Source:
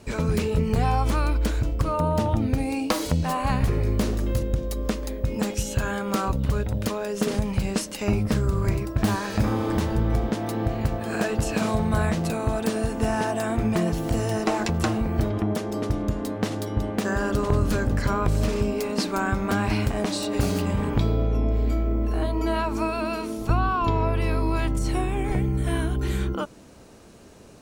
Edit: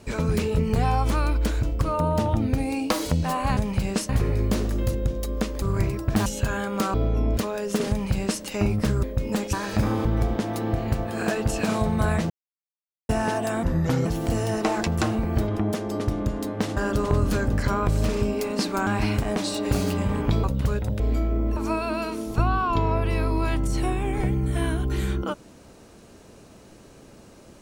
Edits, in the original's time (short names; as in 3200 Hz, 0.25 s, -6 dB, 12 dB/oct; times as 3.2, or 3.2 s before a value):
5.1–5.6 swap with 8.5–9.14
6.28–6.84 swap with 21.12–21.55
7.37–7.89 copy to 3.57
9.66–9.98 cut
12.23–13.02 mute
13.56–13.88 speed 75%
16.59–17.16 cut
19.26–19.55 cut
22.12–22.68 cut